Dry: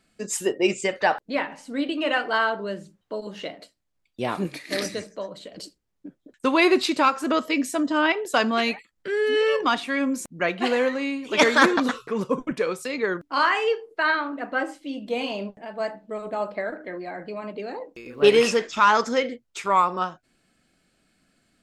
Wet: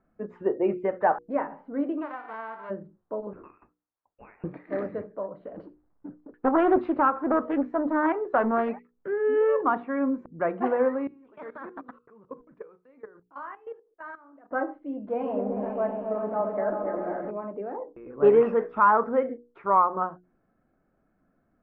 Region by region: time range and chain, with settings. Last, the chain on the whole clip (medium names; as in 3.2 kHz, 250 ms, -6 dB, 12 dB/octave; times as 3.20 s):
2.01–2.69 s: formants flattened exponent 0.1 + compression, threshold -24 dBFS + high-pass 570 Hz
3.33–4.44 s: high-pass 600 Hz 24 dB/octave + frequency inversion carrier 3.2 kHz + compression 2.5:1, threshold -44 dBFS
5.45–8.69 s: companding laws mixed up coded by mu + loudspeaker Doppler distortion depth 0.33 ms
11.07–14.51 s: block-companded coder 5-bit + pre-emphasis filter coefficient 0.8 + level held to a coarse grid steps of 17 dB
15.07–17.31 s: zero-crossing glitches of -28 dBFS + delay with an opening low-pass 129 ms, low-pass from 400 Hz, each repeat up 1 oct, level 0 dB
whole clip: low-pass 1.3 kHz 24 dB/octave; peaking EQ 180 Hz -2 dB 1.4 oct; hum notches 60/120/180/240/300/360/420/480 Hz